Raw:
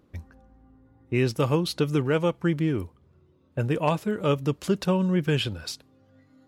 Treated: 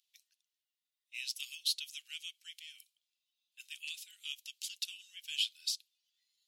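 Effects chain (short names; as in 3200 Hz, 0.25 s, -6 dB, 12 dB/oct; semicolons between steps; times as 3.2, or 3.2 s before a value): steep high-pass 2900 Hz 36 dB/oct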